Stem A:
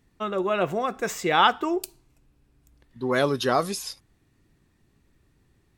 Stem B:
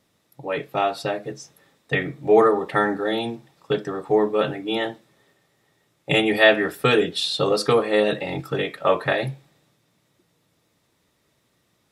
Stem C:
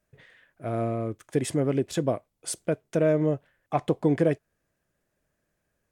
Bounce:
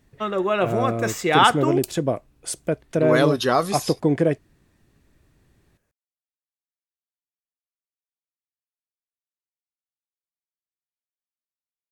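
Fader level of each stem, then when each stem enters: +3.0 dB, off, +3.0 dB; 0.00 s, off, 0.00 s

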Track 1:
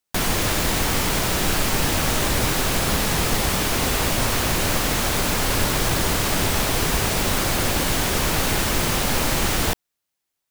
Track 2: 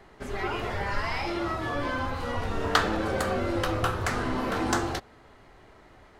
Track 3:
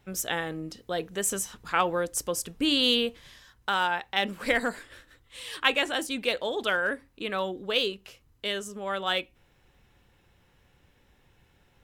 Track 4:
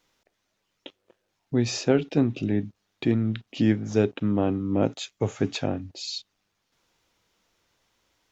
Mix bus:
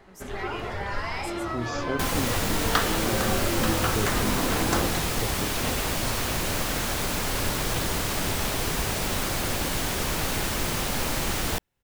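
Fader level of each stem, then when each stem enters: -6.0, -1.0, -16.5, -9.5 dB; 1.85, 0.00, 0.00, 0.00 s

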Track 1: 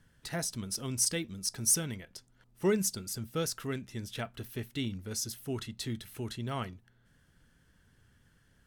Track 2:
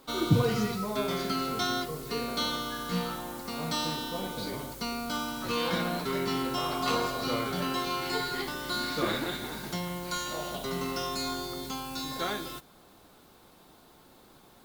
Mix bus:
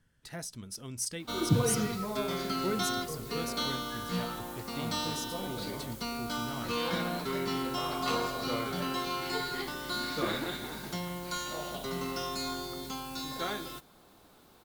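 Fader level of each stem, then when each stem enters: -6.0, -2.5 dB; 0.00, 1.20 s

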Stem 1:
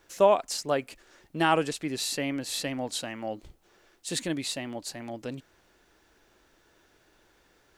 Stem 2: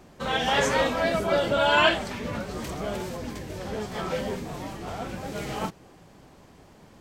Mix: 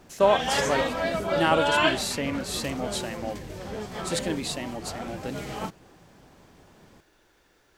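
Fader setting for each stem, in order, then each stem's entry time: +0.5, -2.5 dB; 0.00, 0.00 s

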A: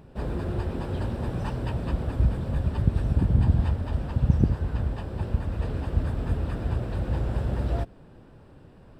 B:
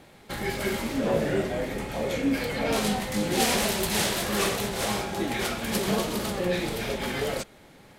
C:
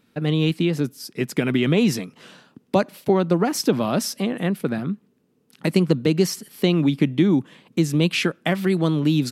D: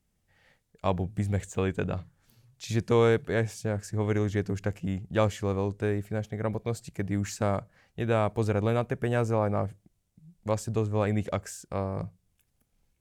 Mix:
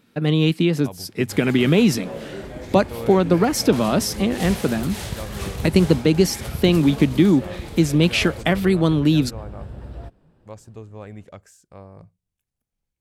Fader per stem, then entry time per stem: -9.0, -8.0, +2.5, -11.0 dB; 2.25, 1.00, 0.00, 0.00 s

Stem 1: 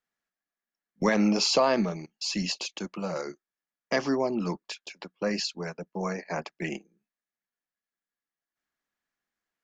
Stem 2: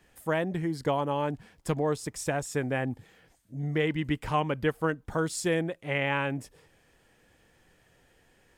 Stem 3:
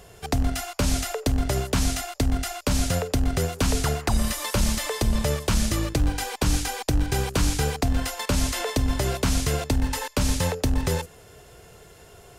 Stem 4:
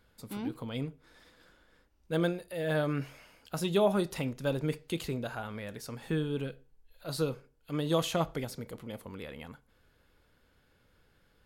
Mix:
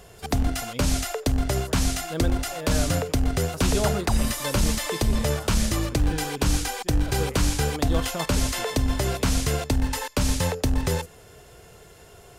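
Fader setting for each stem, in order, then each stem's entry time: off, -17.5 dB, 0.0 dB, -1.5 dB; off, 1.40 s, 0.00 s, 0.00 s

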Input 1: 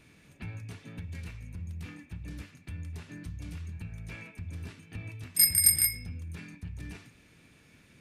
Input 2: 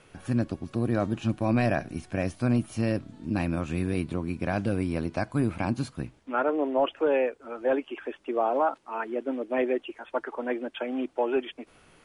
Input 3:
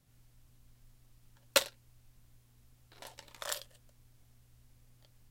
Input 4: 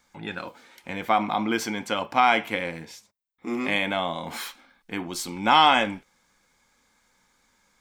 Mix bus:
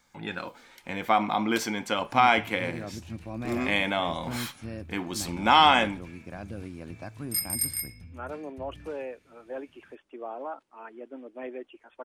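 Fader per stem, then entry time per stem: -7.0, -12.0, -14.0, -1.0 dB; 1.95, 1.85, 0.00, 0.00 s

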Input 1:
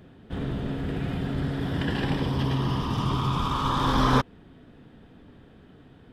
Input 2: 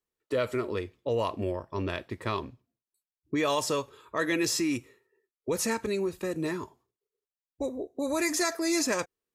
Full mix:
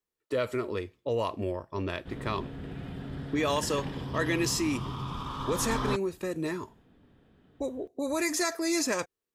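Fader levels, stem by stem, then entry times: -10.0, -1.0 dB; 1.75, 0.00 s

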